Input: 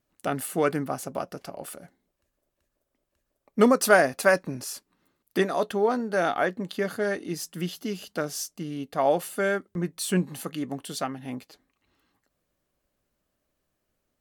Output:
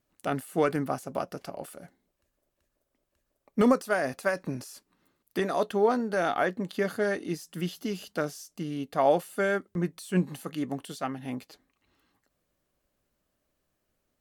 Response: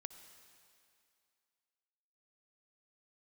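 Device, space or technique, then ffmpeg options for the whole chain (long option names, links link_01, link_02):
de-esser from a sidechain: -filter_complex "[0:a]asplit=2[link_01][link_02];[link_02]highpass=6200,apad=whole_len=626639[link_03];[link_01][link_03]sidechaincompress=threshold=-45dB:ratio=4:attack=1.9:release=71"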